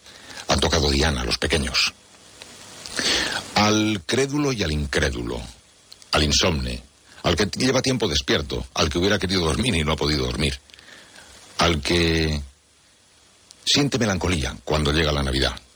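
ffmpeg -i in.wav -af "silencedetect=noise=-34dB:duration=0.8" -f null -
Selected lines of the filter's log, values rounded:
silence_start: 12.47
silence_end: 13.51 | silence_duration: 1.04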